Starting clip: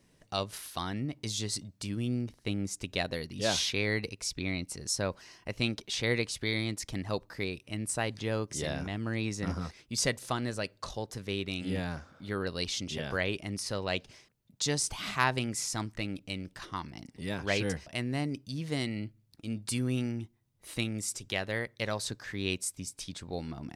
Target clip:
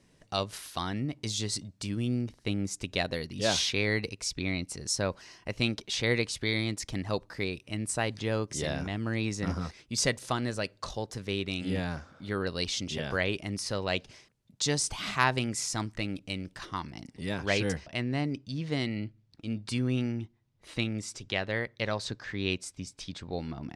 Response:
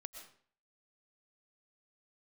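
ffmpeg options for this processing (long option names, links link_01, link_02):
-af "asetnsamples=nb_out_samples=441:pad=0,asendcmd='17.8 lowpass f 5100',lowpass=10000,volume=2dB"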